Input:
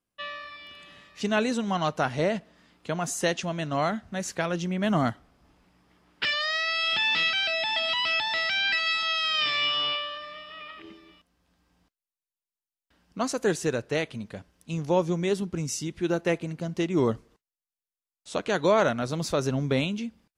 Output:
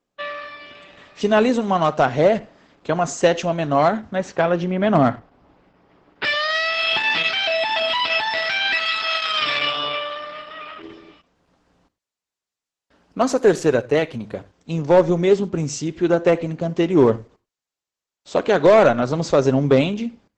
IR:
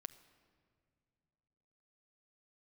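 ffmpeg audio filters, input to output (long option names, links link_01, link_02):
-filter_complex "[0:a]asetnsamples=nb_out_samples=441:pad=0,asendcmd='4.15 lowpass f 3900;6.25 lowpass f 9100',lowpass=9800,equalizer=frequency=560:width=0.45:gain=8.5,volume=10dB,asoftclip=hard,volume=-10dB[link_01];[1:a]atrim=start_sample=2205,atrim=end_sample=3969,asetrate=38808,aresample=44100[link_02];[link_01][link_02]afir=irnorm=-1:irlink=0,volume=8dB" -ar 48000 -c:a libopus -b:a 12k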